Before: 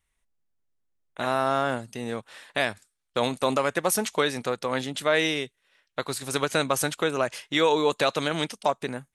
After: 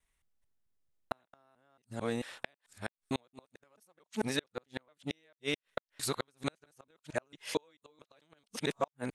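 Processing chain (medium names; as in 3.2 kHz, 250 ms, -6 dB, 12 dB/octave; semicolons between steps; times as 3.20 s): time reversed locally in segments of 222 ms; inverted gate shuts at -15 dBFS, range -41 dB; in parallel at -10.5 dB: saturation -22 dBFS, distortion -13 dB; on the sum: trim -4.5 dB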